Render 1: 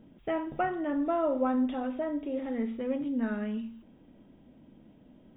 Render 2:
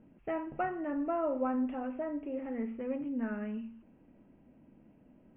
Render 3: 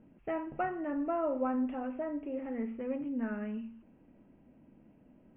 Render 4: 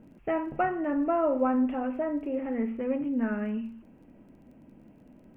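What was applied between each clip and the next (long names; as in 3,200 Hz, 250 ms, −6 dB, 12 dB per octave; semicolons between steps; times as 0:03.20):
elliptic low-pass filter 2,700 Hz, stop band 40 dB; level −3.5 dB
no processing that can be heard
surface crackle 23 per second −61 dBFS; level +6.5 dB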